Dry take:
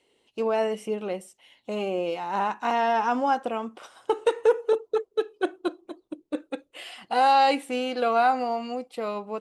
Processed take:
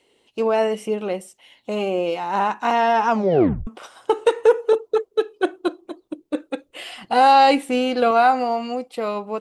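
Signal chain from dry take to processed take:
0:03.09: tape stop 0.58 s
0:06.68–0:08.11: low-shelf EQ 190 Hz +10.5 dB
level +5.5 dB

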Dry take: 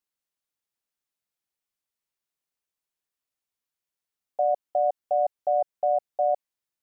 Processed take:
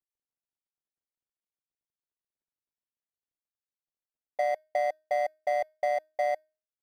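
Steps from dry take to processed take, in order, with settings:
running median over 41 samples
tuned comb filter 310 Hz, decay 0.36 s, harmonics all, mix 50%
transient designer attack +2 dB, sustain −4 dB
level +4 dB

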